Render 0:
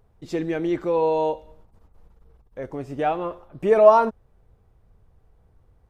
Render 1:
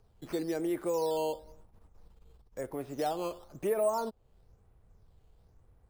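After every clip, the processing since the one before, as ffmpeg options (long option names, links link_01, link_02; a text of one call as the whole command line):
ffmpeg -i in.wav -filter_complex "[0:a]acrusher=samples=8:mix=1:aa=0.000001:lfo=1:lforange=8:lforate=1,acrossover=split=260|1100[link_01][link_02][link_03];[link_01]acompressor=threshold=-43dB:ratio=4[link_04];[link_02]acompressor=threshold=-25dB:ratio=4[link_05];[link_03]acompressor=threshold=-41dB:ratio=4[link_06];[link_04][link_05][link_06]amix=inputs=3:normalize=0,volume=-4.5dB" out.wav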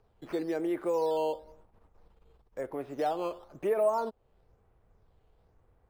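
ffmpeg -i in.wav -af "bass=frequency=250:gain=-7,treble=frequency=4000:gain=-12,volume=2.5dB" out.wav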